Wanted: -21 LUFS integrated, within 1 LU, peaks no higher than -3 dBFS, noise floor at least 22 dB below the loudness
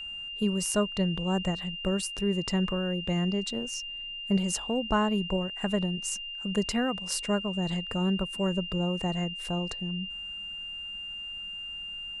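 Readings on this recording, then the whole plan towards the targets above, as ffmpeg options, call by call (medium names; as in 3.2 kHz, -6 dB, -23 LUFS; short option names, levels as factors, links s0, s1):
steady tone 2.8 kHz; tone level -36 dBFS; loudness -30.0 LUFS; peak level -14.5 dBFS; loudness target -21.0 LUFS
-> -af "bandreject=f=2800:w=30"
-af "volume=2.82"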